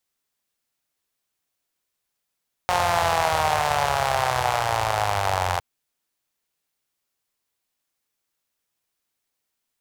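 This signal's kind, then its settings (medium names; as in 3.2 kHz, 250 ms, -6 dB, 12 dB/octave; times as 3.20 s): four-cylinder engine model, changing speed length 2.91 s, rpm 5400, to 2600, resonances 89/760 Hz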